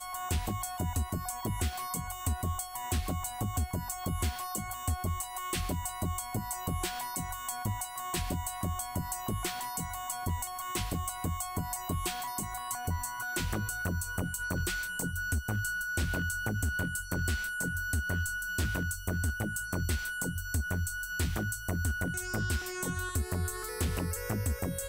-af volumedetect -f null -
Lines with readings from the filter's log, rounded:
mean_volume: -33.7 dB
max_volume: -19.9 dB